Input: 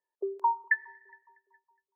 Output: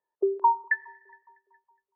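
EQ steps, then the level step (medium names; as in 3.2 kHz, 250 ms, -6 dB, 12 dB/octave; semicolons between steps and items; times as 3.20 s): dynamic bell 330 Hz, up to +7 dB, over -49 dBFS, Q 1.9; low-pass 1.3 kHz 12 dB/octave; bass shelf 470 Hz -5.5 dB; +7.0 dB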